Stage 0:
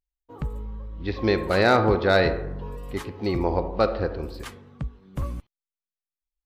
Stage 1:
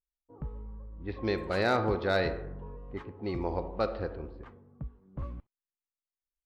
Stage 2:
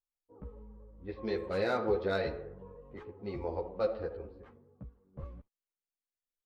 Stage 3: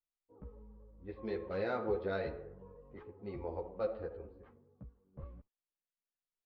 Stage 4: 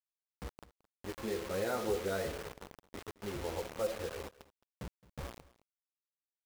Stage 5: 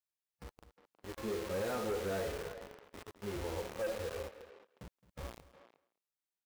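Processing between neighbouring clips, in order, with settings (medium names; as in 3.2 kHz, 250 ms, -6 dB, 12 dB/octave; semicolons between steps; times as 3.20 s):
level-controlled noise filter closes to 670 Hz, open at -17 dBFS; trim -8.5 dB
peaking EQ 490 Hz +7.5 dB 0.62 oct; three-phase chorus; trim -4 dB
distance through air 200 m; trim -4 dB
in parallel at -2 dB: compression 6:1, threshold -44 dBFS, peak gain reduction 14.5 dB; on the sum: bit crusher 7-bit; delay 217 ms -20.5 dB; trim -1 dB
speakerphone echo 360 ms, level -13 dB; harmonic-percussive split percussive -10 dB; overload inside the chain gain 35.5 dB; trim +3 dB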